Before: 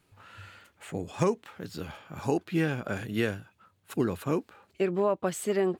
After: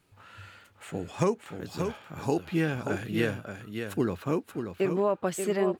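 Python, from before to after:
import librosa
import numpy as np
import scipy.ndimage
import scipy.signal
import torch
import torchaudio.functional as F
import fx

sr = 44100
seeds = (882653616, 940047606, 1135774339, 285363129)

y = fx.median_filter(x, sr, points=5, at=(4.08, 4.91))
y = y + 10.0 ** (-7.0 / 20.0) * np.pad(y, (int(582 * sr / 1000.0), 0))[:len(y)]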